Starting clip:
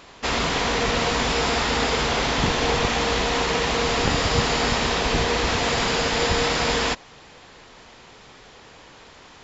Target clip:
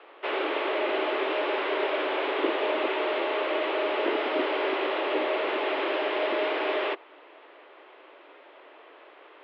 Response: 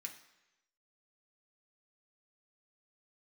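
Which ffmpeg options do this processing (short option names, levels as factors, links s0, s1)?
-filter_complex "[0:a]lowshelf=f=450:g=8,acrossover=split=490|1800[s0][s1][s2];[s1]volume=22.4,asoftclip=hard,volume=0.0447[s3];[s0][s3][s2]amix=inputs=3:normalize=0,highpass=f=180:t=q:w=0.5412,highpass=f=180:t=q:w=1.307,lowpass=f=3000:t=q:w=0.5176,lowpass=f=3000:t=q:w=0.7071,lowpass=f=3000:t=q:w=1.932,afreqshift=150,volume=0.531"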